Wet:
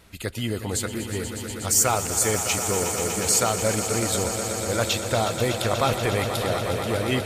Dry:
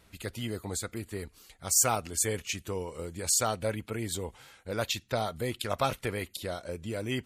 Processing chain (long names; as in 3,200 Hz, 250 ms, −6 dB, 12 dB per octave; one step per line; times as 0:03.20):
in parallel at −0.5 dB: brickwall limiter −20.5 dBFS, peak gain reduction 10 dB
on the sum: echo that builds up and dies away 121 ms, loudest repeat 5, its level −11 dB
level +1.5 dB